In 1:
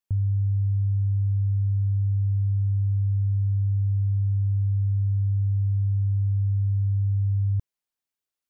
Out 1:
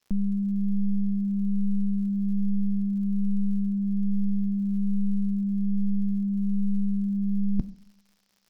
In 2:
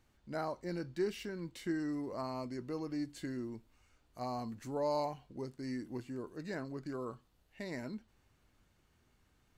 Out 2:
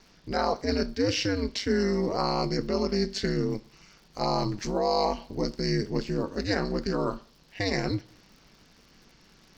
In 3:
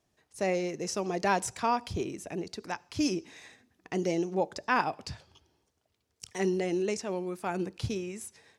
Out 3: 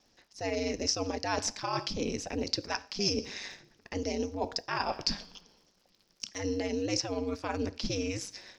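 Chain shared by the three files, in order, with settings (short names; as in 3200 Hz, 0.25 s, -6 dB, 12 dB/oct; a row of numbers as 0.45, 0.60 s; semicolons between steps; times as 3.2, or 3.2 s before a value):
HPF 57 Hz 12 dB/oct; two-slope reverb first 0.53 s, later 1.5 s, from -22 dB, DRR 17 dB; reverse; compressor 6:1, threshold -36 dBFS; reverse; ring modulator 100 Hz; EQ curve 1300 Hz 0 dB, 3700 Hz +4 dB, 5300 Hz +12 dB, 9300 Hz -16 dB; crackle 110/s -65 dBFS; normalise peaks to -12 dBFS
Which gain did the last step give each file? +15.5, +17.0, +9.0 dB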